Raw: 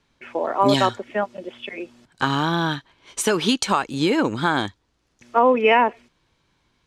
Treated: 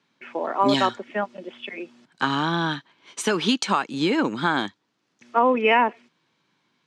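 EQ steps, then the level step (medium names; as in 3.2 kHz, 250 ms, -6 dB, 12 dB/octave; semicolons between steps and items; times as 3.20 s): high-pass 160 Hz 24 dB/octave; distance through air 58 m; peaking EQ 530 Hz -4 dB 1.3 oct; 0.0 dB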